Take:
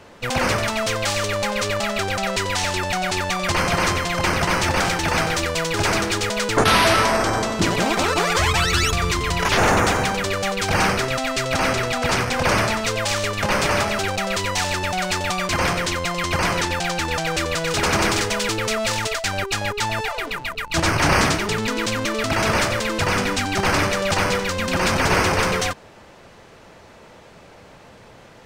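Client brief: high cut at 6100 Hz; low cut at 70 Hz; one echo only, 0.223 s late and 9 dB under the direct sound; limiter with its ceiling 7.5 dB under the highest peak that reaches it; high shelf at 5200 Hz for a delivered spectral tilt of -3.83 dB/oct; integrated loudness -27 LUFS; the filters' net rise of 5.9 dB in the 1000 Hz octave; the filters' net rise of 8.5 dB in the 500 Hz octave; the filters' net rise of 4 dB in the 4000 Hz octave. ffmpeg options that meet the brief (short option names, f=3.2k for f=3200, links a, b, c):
-af "highpass=70,lowpass=6.1k,equalizer=f=500:t=o:g=9,equalizer=f=1k:t=o:g=4.5,equalizer=f=4k:t=o:g=7,highshelf=f=5.2k:g=-3.5,alimiter=limit=-6dB:level=0:latency=1,aecho=1:1:223:0.355,volume=-11dB"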